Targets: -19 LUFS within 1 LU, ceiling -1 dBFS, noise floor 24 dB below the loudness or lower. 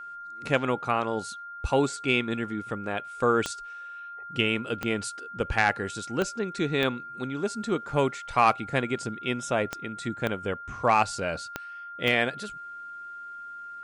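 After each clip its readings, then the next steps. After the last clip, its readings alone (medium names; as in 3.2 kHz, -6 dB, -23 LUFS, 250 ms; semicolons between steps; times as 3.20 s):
clicks found 8; steady tone 1.4 kHz; tone level -38 dBFS; loudness -28.0 LUFS; peak level -10.5 dBFS; loudness target -19.0 LUFS
-> de-click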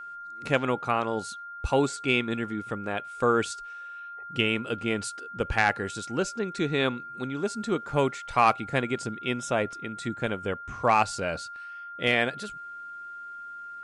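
clicks found 0; steady tone 1.4 kHz; tone level -38 dBFS
-> band-stop 1.4 kHz, Q 30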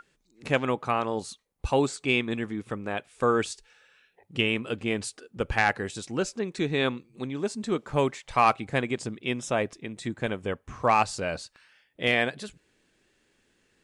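steady tone not found; loudness -28.0 LUFS; peak level -10.5 dBFS; loudness target -19.0 LUFS
-> trim +9 dB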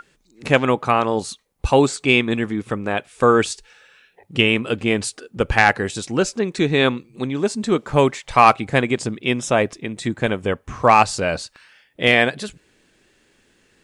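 loudness -19.0 LUFS; peak level -1.5 dBFS; noise floor -61 dBFS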